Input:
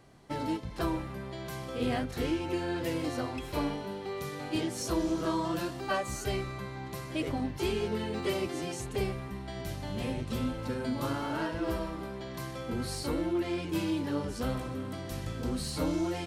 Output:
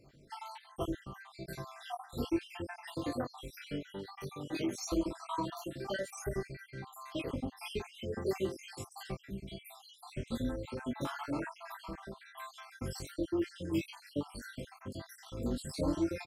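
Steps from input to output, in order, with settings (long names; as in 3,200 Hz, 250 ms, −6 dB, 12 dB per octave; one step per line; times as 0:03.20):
time-frequency cells dropped at random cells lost 69%
double-tracking delay 21 ms −4 dB
level −2.5 dB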